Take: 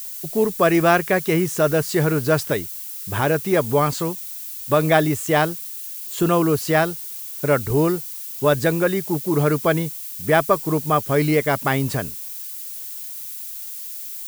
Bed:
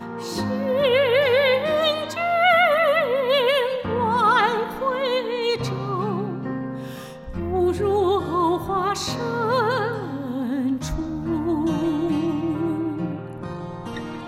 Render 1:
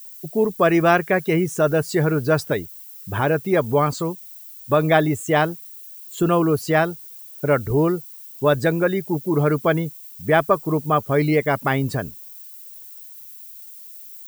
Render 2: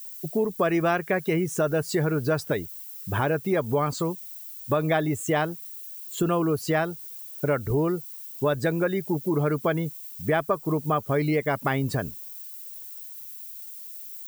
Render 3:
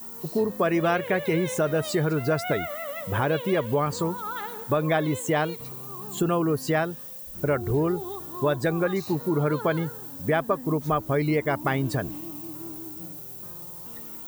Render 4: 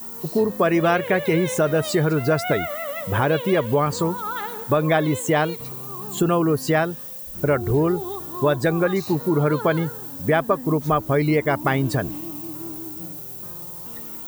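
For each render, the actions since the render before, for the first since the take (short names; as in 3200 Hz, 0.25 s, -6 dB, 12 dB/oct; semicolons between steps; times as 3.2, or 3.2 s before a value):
denoiser 12 dB, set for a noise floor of -33 dBFS
compressor 2.5:1, threshold -23 dBFS, peak gain reduction 8.5 dB
add bed -16.5 dB
gain +4.5 dB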